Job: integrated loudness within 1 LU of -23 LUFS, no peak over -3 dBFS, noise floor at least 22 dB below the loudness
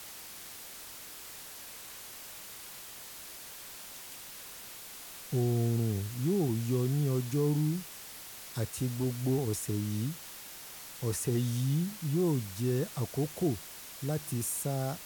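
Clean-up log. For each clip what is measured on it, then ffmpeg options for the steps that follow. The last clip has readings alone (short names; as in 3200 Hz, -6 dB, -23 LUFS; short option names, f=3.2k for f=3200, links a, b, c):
noise floor -47 dBFS; noise floor target -56 dBFS; loudness -34.0 LUFS; peak -19.0 dBFS; loudness target -23.0 LUFS
-> -af "afftdn=nr=9:nf=-47"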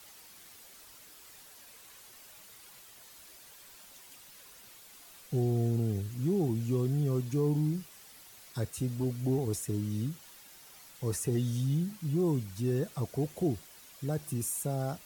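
noise floor -54 dBFS; noise floor target -55 dBFS
-> -af "afftdn=nr=6:nf=-54"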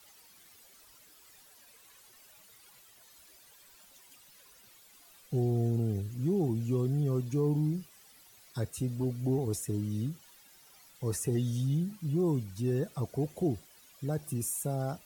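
noise floor -59 dBFS; loudness -32.5 LUFS; peak -19.5 dBFS; loudness target -23.0 LUFS
-> -af "volume=9.5dB"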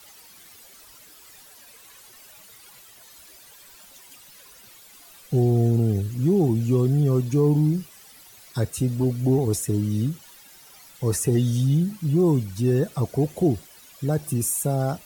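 loudness -23.0 LUFS; peak -10.0 dBFS; noise floor -49 dBFS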